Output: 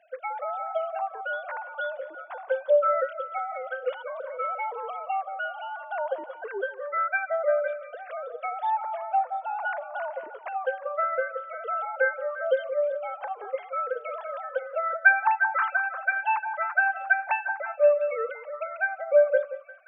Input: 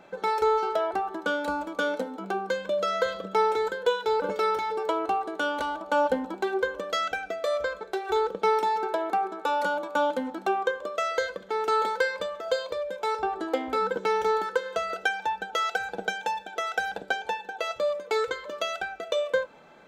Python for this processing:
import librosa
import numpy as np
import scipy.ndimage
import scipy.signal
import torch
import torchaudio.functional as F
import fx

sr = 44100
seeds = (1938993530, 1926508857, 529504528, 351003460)

y = fx.sine_speech(x, sr)
y = scipy.signal.sosfilt(scipy.signal.bessel(2, 250.0, 'highpass', norm='mag', fs=sr, output='sos'), y)
y = fx.echo_stepped(y, sr, ms=175, hz=760.0, octaves=0.7, feedback_pct=70, wet_db=-8.0)